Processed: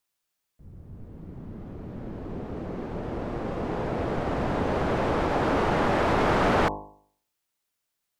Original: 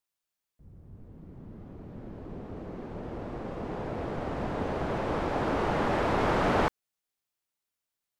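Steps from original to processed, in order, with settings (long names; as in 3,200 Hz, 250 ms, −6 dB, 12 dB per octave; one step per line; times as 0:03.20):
hum removal 50.73 Hz, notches 22
in parallel at +0.5 dB: brickwall limiter −23.5 dBFS, peak gain reduction 8 dB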